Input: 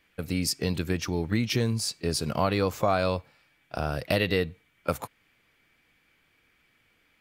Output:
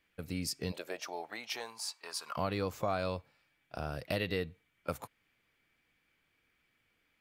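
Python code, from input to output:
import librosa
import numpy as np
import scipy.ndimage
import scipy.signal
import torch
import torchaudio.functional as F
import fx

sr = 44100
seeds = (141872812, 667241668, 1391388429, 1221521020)

y = fx.highpass_res(x, sr, hz=fx.line((0.71, 560.0), (2.36, 1100.0)), q=4.9, at=(0.71, 2.36), fade=0.02)
y = F.gain(torch.from_numpy(y), -9.0).numpy()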